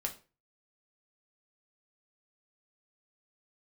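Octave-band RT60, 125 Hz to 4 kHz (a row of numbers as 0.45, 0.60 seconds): 0.45, 0.35, 0.35, 0.30, 0.30, 0.30 seconds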